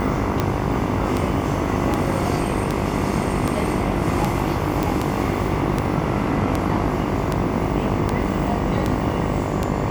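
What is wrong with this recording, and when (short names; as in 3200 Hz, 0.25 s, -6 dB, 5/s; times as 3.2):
buzz 50 Hz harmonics 23 -26 dBFS
tick 78 rpm -7 dBFS
4.83 pop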